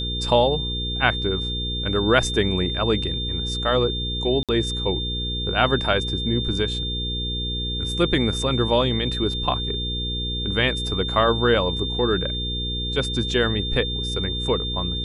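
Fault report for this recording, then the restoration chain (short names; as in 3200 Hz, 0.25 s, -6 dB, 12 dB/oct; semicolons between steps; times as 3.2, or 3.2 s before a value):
hum 60 Hz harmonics 8 -29 dBFS
tone 3600 Hz -27 dBFS
4.43–4.49 gap 57 ms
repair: de-hum 60 Hz, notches 8; notch 3600 Hz, Q 30; interpolate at 4.43, 57 ms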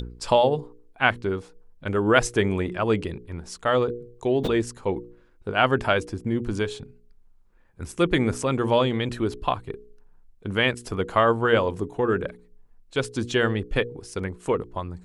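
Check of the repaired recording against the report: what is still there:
none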